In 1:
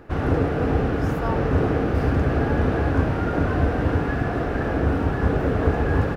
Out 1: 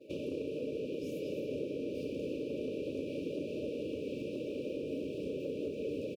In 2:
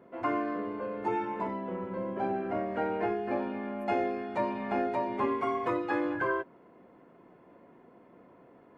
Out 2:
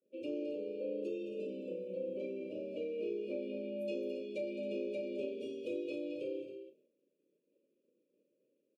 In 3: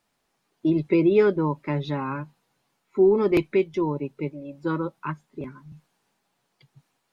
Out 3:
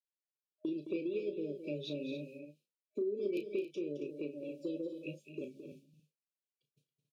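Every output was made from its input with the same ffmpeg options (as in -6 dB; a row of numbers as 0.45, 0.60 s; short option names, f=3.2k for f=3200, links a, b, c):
-filter_complex "[0:a]agate=range=-33dB:threshold=-44dB:ratio=3:detection=peak,highpass=330,afftfilt=real='re*(1-between(b*sr/4096,620,2300))':imag='im*(1-between(b*sr/4096,620,2300))':win_size=4096:overlap=0.75,acompressor=threshold=-37dB:ratio=4,asplit=2[a][b];[b]adelay=34,volume=-9dB[c];[a][c]amix=inputs=2:normalize=0,asplit=2[d][e];[e]aecho=0:1:215.7|274.1:0.316|0.282[f];[d][f]amix=inputs=2:normalize=0,volume=-1dB"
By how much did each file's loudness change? -16.0, -8.0, -16.0 LU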